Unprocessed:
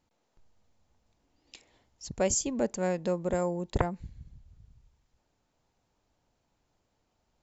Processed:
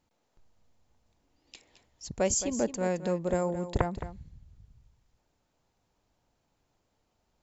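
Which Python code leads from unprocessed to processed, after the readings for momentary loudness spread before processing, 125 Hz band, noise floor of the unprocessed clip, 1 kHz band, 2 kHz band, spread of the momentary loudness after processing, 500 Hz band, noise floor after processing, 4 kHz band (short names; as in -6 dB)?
16 LU, +0.5 dB, -77 dBFS, +0.5 dB, 0.0 dB, 15 LU, 0.0 dB, -77 dBFS, +0.5 dB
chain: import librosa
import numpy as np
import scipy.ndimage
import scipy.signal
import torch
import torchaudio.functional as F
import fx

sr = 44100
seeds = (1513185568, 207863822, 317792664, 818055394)

y = x + 10.0 ** (-12.0 / 20.0) * np.pad(x, (int(217 * sr / 1000.0), 0))[:len(x)]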